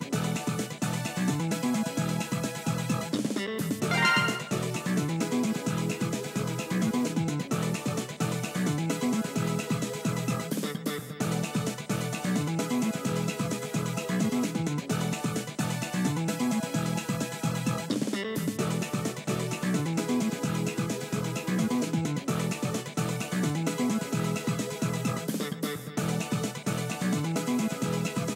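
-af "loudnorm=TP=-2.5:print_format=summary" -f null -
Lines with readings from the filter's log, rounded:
Input Integrated:    -29.8 LUFS
Input True Peak:     -11.2 dBTP
Input LRA:             2.4 LU
Input Threshold:     -39.8 LUFS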